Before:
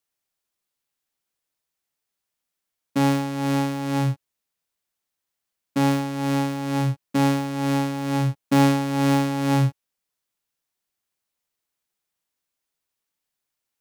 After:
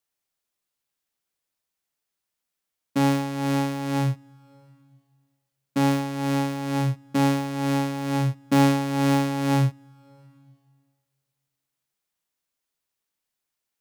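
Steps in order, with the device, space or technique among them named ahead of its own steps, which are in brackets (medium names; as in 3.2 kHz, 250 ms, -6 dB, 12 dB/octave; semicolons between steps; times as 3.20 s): compressed reverb return (on a send at -13 dB: reverberation RT60 1.7 s, pre-delay 70 ms + compression 10:1, threshold -33 dBFS, peak gain reduction 19.5 dB); on the sum: trim -1 dB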